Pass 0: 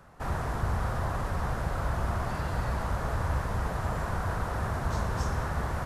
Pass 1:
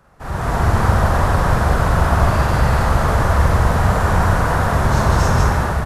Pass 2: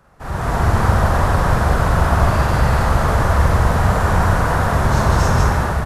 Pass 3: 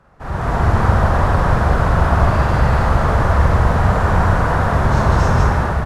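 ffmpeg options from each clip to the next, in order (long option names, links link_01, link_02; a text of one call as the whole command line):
ffmpeg -i in.wav -af "aeval=exprs='0.106*(abs(mod(val(0)/0.106+3,4)-2)-1)':channel_layout=same,dynaudnorm=framelen=110:gausssize=7:maxgain=11.5dB,aecho=1:1:43.73|128.3|195.3:0.794|0.355|0.891" out.wav
ffmpeg -i in.wav -af anull out.wav
ffmpeg -i in.wav -af "aemphasis=mode=reproduction:type=50kf,volume=1dB" out.wav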